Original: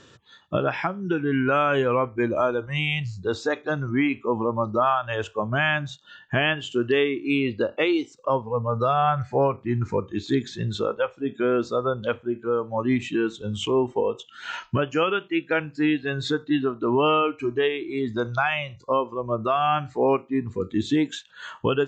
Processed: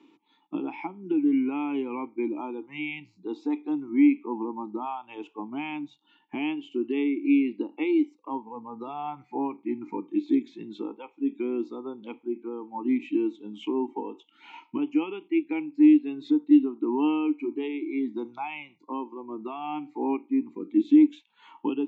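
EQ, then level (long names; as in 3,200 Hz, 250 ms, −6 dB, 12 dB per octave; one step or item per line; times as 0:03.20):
dynamic equaliser 1,500 Hz, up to −6 dB, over −35 dBFS, Q 0.91
formant filter u
high-pass filter 190 Hz 24 dB per octave
+7.0 dB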